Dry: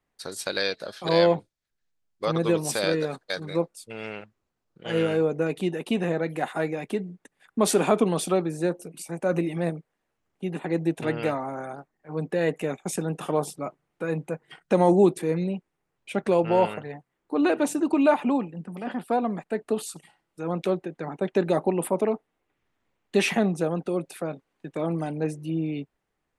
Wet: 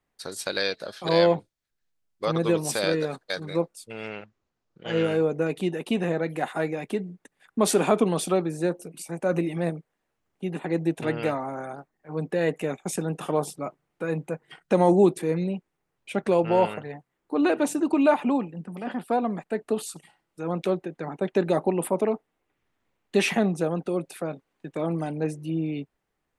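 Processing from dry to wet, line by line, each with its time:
4.08–5.04 s: steep low-pass 7.3 kHz

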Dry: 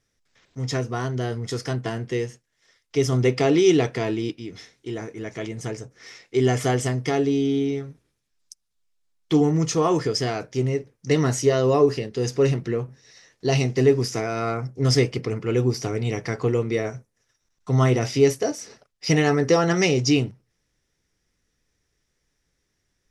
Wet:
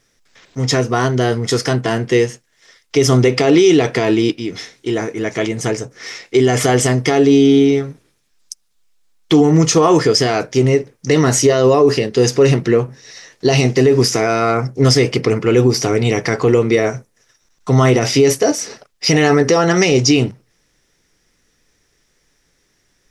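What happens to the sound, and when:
19.42–19.92 s: compression 2.5:1, threshold -22 dBFS
whole clip: peaking EQ 67 Hz -7.5 dB 2.4 oct; loudness maximiser +16 dB; trim -2.5 dB

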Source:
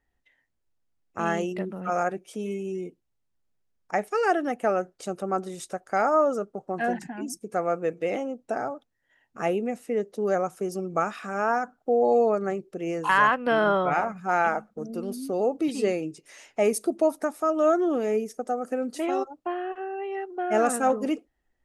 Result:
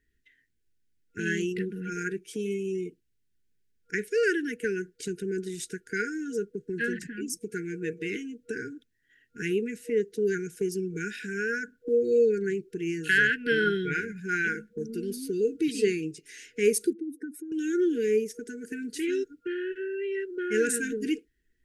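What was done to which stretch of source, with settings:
16.93–17.52 s: spectral contrast enhancement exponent 2.2
whole clip: FFT band-reject 480–1400 Hz; dynamic bell 250 Hz, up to -6 dB, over -42 dBFS, Q 2; trim +2.5 dB

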